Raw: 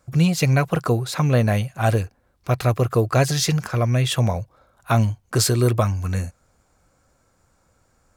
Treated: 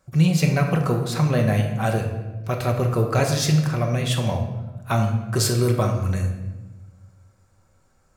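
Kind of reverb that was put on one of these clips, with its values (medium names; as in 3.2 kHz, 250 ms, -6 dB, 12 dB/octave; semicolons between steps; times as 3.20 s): simulated room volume 650 m³, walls mixed, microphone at 1.1 m; trim -3.5 dB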